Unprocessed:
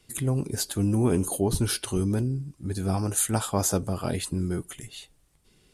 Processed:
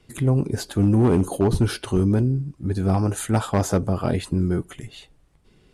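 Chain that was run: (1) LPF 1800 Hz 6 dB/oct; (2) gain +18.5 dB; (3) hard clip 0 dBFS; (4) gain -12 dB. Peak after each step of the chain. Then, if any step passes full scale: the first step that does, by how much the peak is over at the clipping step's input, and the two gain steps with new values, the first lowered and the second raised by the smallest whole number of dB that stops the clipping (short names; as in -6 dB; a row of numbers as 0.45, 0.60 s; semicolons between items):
-12.0, +6.5, 0.0, -12.0 dBFS; step 2, 6.5 dB; step 2 +11.5 dB, step 4 -5 dB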